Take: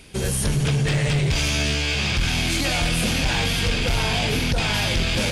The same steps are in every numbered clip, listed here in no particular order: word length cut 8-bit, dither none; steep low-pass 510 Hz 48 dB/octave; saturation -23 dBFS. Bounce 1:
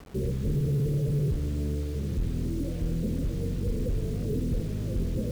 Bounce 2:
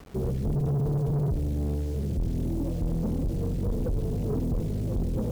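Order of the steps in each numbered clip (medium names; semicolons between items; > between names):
saturation > steep low-pass > word length cut; steep low-pass > word length cut > saturation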